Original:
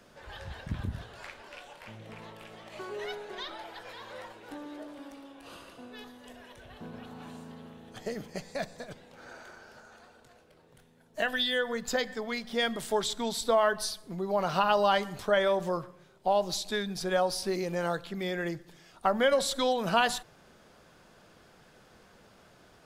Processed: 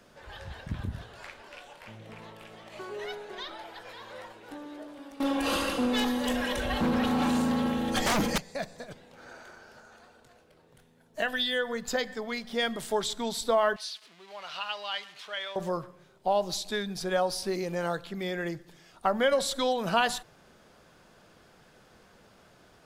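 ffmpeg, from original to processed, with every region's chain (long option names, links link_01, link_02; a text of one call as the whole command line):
ffmpeg -i in.wav -filter_complex "[0:a]asettb=1/sr,asplit=3[link_01][link_02][link_03];[link_01]atrim=end=5.204[link_04];[link_02]atrim=start=5.2:end=8.38,asetpts=PTS-STARTPTS,afade=type=in:duration=0.004:curve=qsin,afade=type=out:start_time=3.176:duration=0.004:curve=qsin,aecho=1:1:3.7:0.75,atrim=end_sample=140238,aeval=exprs='0.0794*sin(PI/2*5.62*val(0)/0.0794)':channel_layout=same[link_05];[link_03]atrim=start=8.376[link_06];[link_04][link_05]acrossfade=duration=0.004:curve1=hsin:curve2=qsin[link_07];[link_07][link_06]acrossfade=duration=0.004:curve1=qsin:curve2=hsin,asettb=1/sr,asplit=3[link_08][link_09][link_10];[link_08]atrim=end=13.764[link_11];[link_09]atrim=start=13.76:end=15.56,asetpts=PTS-STARTPTS,afade=type=in:duration=0.004:curve=qsin,afade=type=out:start_time=1.796:duration=0.004:curve=qsin,aeval=exprs='val(0)+0.5*0.0112*sgn(val(0))':channel_layout=same,bandpass=frequency=3100:width_type=q:width=1.5[link_12];[link_10]atrim=start=15.556[link_13];[link_11][link_12]acrossfade=duration=0.004:curve1=hsin:curve2=qsin[link_14];[link_14][link_13]acrossfade=duration=0.004:curve1=qsin:curve2=hsin" out.wav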